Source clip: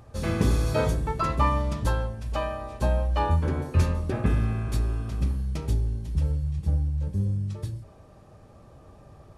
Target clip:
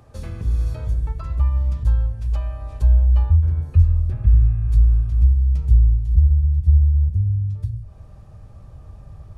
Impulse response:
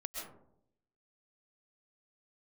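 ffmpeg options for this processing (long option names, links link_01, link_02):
-filter_complex "[0:a]asubboost=boost=6:cutoff=120,acrossover=split=110[link_01][link_02];[link_02]acompressor=threshold=-38dB:ratio=10[link_03];[link_01][link_03]amix=inputs=2:normalize=0"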